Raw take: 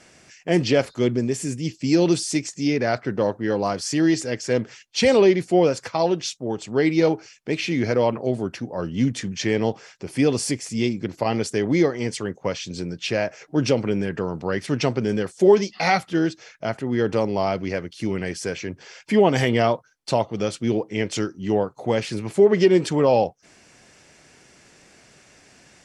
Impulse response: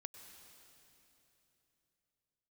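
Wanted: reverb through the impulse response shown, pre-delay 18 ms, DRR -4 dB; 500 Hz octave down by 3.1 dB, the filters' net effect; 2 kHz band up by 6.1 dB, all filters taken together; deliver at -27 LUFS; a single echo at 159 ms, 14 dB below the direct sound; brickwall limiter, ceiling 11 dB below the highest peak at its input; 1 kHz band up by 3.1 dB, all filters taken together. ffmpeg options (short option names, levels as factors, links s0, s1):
-filter_complex "[0:a]equalizer=f=500:t=o:g=-5.5,equalizer=f=1000:t=o:g=5.5,equalizer=f=2000:t=o:g=6,alimiter=limit=0.211:level=0:latency=1,aecho=1:1:159:0.2,asplit=2[s0][s1];[1:a]atrim=start_sample=2205,adelay=18[s2];[s1][s2]afir=irnorm=-1:irlink=0,volume=2.82[s3];[s0][s3]amix=inputs=2:normalize=0,volume=0.473"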